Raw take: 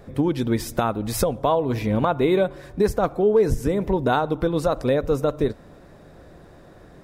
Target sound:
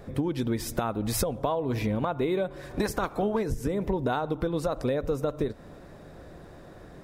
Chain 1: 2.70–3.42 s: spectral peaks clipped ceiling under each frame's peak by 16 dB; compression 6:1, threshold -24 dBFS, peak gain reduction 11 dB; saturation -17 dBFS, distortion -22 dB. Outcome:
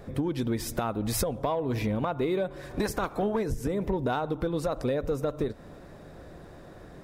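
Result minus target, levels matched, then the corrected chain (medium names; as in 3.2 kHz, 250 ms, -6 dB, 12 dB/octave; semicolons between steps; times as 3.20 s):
saturation: distortion +16 dB
2.70–3.42 s: spectral peaks clipped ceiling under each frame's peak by 16 dB; compression 6:1, threshold -24 dBFS, peak gain reduction 11 dB; saturation -8 dBFS, distortion -38 dB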